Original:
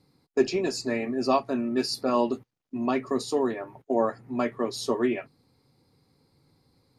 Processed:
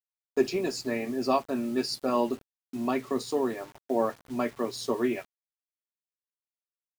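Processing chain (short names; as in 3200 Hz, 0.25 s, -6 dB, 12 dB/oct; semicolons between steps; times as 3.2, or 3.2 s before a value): crossover distortion -54 dBFS; requantised 8-bit, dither none; gain -2 dB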